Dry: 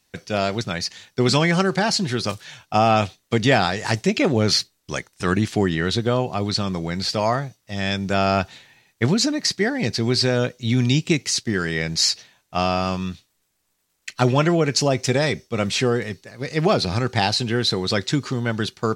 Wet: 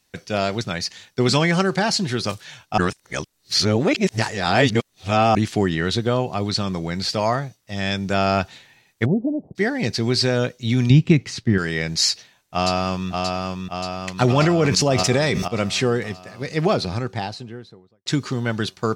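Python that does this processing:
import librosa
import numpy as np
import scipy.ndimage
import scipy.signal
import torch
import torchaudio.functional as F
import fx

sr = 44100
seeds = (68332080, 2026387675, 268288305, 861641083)

y = fx.steep_lowpass(x, sr, hz=750.0, slope=48, at=(9.04, 9.55), fade=0.02)
y = fx.bass_treble(y, sr, bass_db=9, treble_db=-14, at=(10.9, 11.58))
y = fx.echo_throw(y, sr, start_s=12.08, length_s=1.02, ms=580, feedback_pct=65, wet_db=-3.5)
y = fx.sustainer(y, sr, db_per_s=21.0, at=(14.25, 15.48))
y = fx.studio_fade_out(y, sr, start_s=16.4, length_s=1.66)
y = fx.edit(y, sr, fx.reverse_span(start_s=2.78, length_s=2.57), tone=tone)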